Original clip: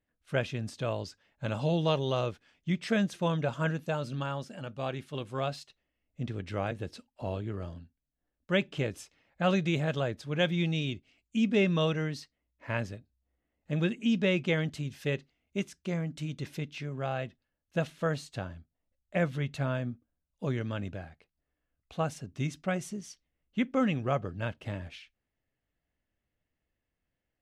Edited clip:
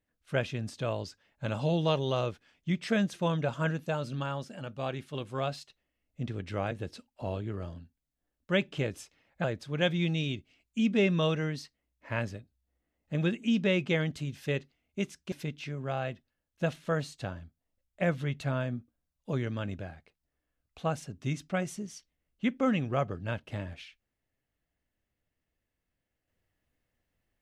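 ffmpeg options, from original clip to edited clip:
ffmpeg -i in.wav -filter_complex "[0:a]asplit=3[link_01][link_02][link_03];[link_01]atrim=end=9.442[link_04];[link_02]atrim=start=10.018:end=15.902[link_05];[link_03]atrim=start=16.458[link_06];[link_04][link_05]acrossfade=duration=0.004:curve1=hsin:curve2=hsin[link_07];[link_07][link_06]acrossfade=duration=0.004:curve1=hsin:curve2=hsin" out.wav

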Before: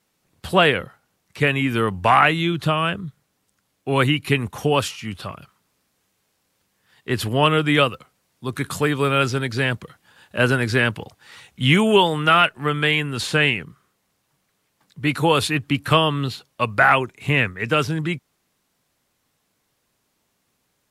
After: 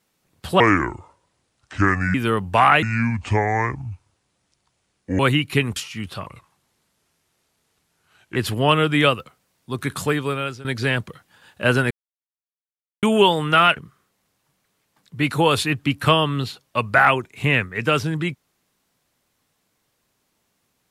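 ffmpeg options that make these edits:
ffmpeg -i in.wav -filter_complex "[0:a]asplit=12[link_01][link_02][link_03][link_04][link_05][link_06][link_07][link_08][link_09][link_10][link_11][link_12];[link_01]atrim=end=0.604[link_13];[link_02]atrim=start=0.6:end=1.65,asetpts=PTS-STARTPTS,asetrate=29988,aresample=44100[link_14];[link_03]atrim=start=1.646:end=2.334[link_15];[link_04]atrim=start=2.33:end=3.94,asetpts=PTS-STARTPTS,asetrate=29988,aresample=44100,atrim=end_sample=104413,asetpts=PTS-STARTPTS[link_16];[link_05]atrim=start=3.936:end=4.512[link_17];[link_06]atrim=start=4.838:end=5.344[link_18];[link_07]atrim=start=5.34:end=7.1,asetpts=PTS-STARTPTS,asetrate=37044,aresample=44100[link_19];[link_08]atrim=start=7.096:end=9.39,asetpts=PTS-STARTPTS,afade=type=out:start_time=1.684:duration=0.61:silence=0.105925[link_20];[link_09]atrim=start=9.39:end=10.65,asetpts=PTS-STARTPTS,afade=type=in:duration=0.004:curve=hsin:silence=0.105925,afade=type=out:start_time=1.256:duration=0.004:curve=hsin[link_21];[link_10]atrim=start=10.65:end=11.77,asetpts=PTS-STARTPTS,volume=0[link_22];[link_11]atrim=start=11.77:end=12.512,asetpts=PTS-STARTPTS,afade=type=in:duration=0.004:curve=hsin[link_23];[link_12]atrim=start=13.608[link_24];[link_13][link_14]acrossfade=duration=0.004:curve1=hsin:curve2=hsin[link_25];[link_25][link_15]acrossfade=duration=0.004:curve1=hsin:curve2=hsin[link_26];[link_26][link_16]acrossfade=duration=0.004:curve1=hsin:curve2=hsin[link_27];[link_27][link_17]acrossfade=duration=0.004:curve1=hsin:curve2=hsin[link_28];[link_28][link_18]acrossfade=duration=0.004:curve1=hsin:curve2=hsin[link_29];[link_29][link_19]acrossfade=duration=0.004:curve1=hsin:curve2=hsin[link_30];[link_20][link_21][link_22][link_23]concat=n=4:v=0:a=1[link_31];[link_30][link_31]acrossfade=duration=0.004:curve1=hsin:curve2=hsin[link_32];[link_32][link_24]acrossfade=duration=0.004:curve1=hsin:curve2=hsin" out.wav

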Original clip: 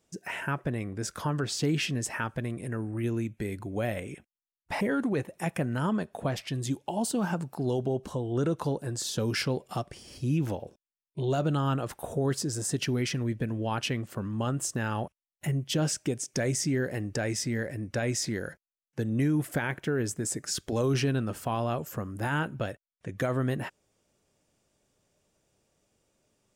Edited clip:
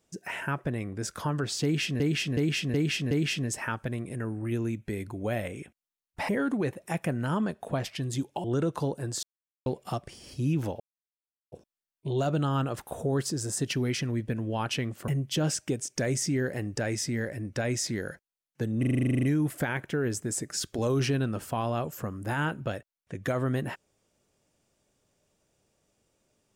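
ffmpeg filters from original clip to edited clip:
ffmpeg -i in.wav -filter_complex "[0:a]asplit=21[link_01][link_02][link_03][link_04][link_05][link_06][link_07][link_08][link_09][link_10][link_11][link_12][link_13][link_14][link_15][link_16][link_17][link_18][link_19][link_20][link_21];[link_01]atrim=end=2.002[link_22];[link_02]atrim=start=1.628:end=2.002[link_23];[link_03]atrim=start=1.628:end=2.002[link_24];[link_04]atrim=start=1.628:end=2.002[link_25];[link_05]atrim=start=1.628:end=6.962[link_26];[link_06]atrim=start=8.278:end=9.07,asetpts=PTS-STARTPTS,afade=type=out:start_time=0.788:duration=0.004:curve=hsin[link_27];[link_07]atrim=start=9.07:end=9.5,asetpts=PTS-STARTPTS,volume=0[link_28];[link_08]atrim=start=9.5:end=10.64,asetpts=PTS-STARTPTS,afade=type=in:duration=0.004:curve=hsin,afade=type=out:start_time=1.136:duration=0.004:curve=hsin,apad=pad_dur=0.72[link_29];[link_09]atrim=start=10.64:end=14.202,asetpts=PTS-STARTPTS,afade=type=in:duration=0.004:curve=hsin[link_30];[link_10]atrim=start=15.458:end=19.212[link_31];[link_11]atrim=start=19.168:end=19.212[link_32];[link_12]atrim=start=19.168:end=19.212[link_33];[link_13]atrim=start=19.168:end=19.212[link_34];[link_14]atrim=start=19.168:end=19.212[link_35];[link_15]atrim=start=19.168:end=19.212[link_36];[link_16]atrim=start=19.168:end=19.212[link_37];[link_17]atrim=start=19.168:end=19.212[link_38];[link_18]atrim=start=19.168:end=19.212[link_39];[link_19]atrim=start=19.168:end=19.212[link_40];[link_20]atrim=start=19.168:end=19.212[link_41];[link_21]atrim=start=19.168[link_42];[link_22][link_23]acrossfade=duration=0.004:curve1=hsin:curve2=hsin[link_43];[link_43][link_24]acrossfade=duration=0.004:curve1=hsin:curve2=hsin[link_44];[link_44][link_25]acrossfade=duration=0.004:curve1=hsin:curve2=hsin[link_45];[link_45][link_26]acrossfade=duration=0.004:curve1=hsin:curve2=hsin[link_46];[link_27][link_28][link_29][link_30]concat=n=4:v=0:a=1[link_47];[link_46][link_47]acrossfade=duration=0.004:curve1=hsin:curve2=hsin[link_48];[link_48][link_31]acrossfade=duration=0.004:curve1=hsin:curve2=hsin[link_49];[link_49][link_32]acrossfade=duration=0.004:curve1=hsin:curve2=hsin[link_50];[link_50][link_33]acrossfade=duration=0.004:curve1=hsin:curve2=hsin[link_51];[link_51][link_34]acrossfade=duration=0.004:curve1=hsin:curve2=hsin[link_52];[link_52][link_35]acrossfade=duration=0.004:curve1=hsin:curve2=hsin[link_53];[link_53][link_36]acrossfade=duration=0.004:curve1=hsin:curve2=hsin[link_54];[link_54][link_37]acrossfade=duration=0.004:curve1=hsin:curve2=hsin[link_55];[link_55][link_38]acrossfade=duration=0.004:curve1=hsin:curve2=hsin[link_56];[link_56][link_39]acrossfade=duration=0.004:curve1=hsin:curve2=hsin[link_57];[link_57][link_40]acrossfade=duration=0.004:curve1=hsin:curve2=hsin[link_58];[link_58][link_41]acrossfade=duration=0.004:curve1=hsin:curve2=hsin[link_59];[link_59][link_42]acrossfade=duration=0.004:curve1=hsin:curve2=hsin" out.wav

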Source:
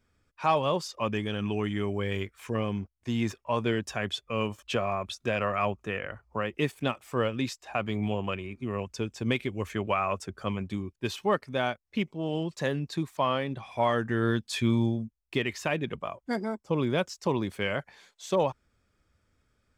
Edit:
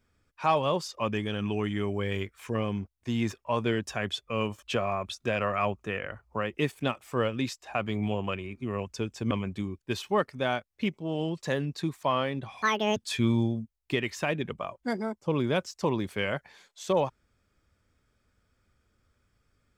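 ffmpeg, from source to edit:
ffmpeg -i in.wav -filter_complex "[0:a]asplit=4[link_01][link_02][link_03][link_04];[link_01]atrim=end=9.312[link_05];[link_02]atrim=start=10.448:end=13.764[link_06];[link_03]atrim=start=13.76:end=14.39,asetpts=PTS-STARTPTS,asetrate=81144,aresample=44100,atrim=end_sample=15099,asetpts=PTS-STARTPTS[link_07];[link_04]atrim=start=14.386[link_08];[link_05][link_06]acrossfade=duration=0.004:curve1=hsin:curve2=hsin[link_09];[link_09][link_07]acrossfade=duration=0.004:curve1=hsin:curve2=hsin[link_10];[link_10][link_08]acrossfade=duration=0.004:curve1=hsin:curve2=hsin" out.wav

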